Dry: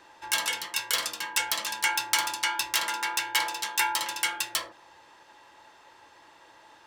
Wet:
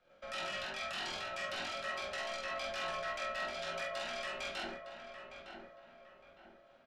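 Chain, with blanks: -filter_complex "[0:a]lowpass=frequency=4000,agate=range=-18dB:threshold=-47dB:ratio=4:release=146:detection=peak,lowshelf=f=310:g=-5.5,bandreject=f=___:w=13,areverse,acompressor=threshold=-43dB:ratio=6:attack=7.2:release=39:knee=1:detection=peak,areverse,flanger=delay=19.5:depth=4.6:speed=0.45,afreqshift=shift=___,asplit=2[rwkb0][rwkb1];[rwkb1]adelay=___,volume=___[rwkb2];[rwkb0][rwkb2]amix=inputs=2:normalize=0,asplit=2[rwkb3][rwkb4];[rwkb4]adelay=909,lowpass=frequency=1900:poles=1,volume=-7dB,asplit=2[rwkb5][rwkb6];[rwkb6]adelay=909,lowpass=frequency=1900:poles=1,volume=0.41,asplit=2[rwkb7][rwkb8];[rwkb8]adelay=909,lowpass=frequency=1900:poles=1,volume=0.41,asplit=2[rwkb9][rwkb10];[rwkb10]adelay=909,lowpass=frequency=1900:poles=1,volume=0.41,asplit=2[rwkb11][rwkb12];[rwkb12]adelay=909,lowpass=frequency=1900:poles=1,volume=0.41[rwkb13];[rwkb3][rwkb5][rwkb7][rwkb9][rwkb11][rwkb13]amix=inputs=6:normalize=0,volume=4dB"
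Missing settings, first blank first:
1300, -310, 46, -3dB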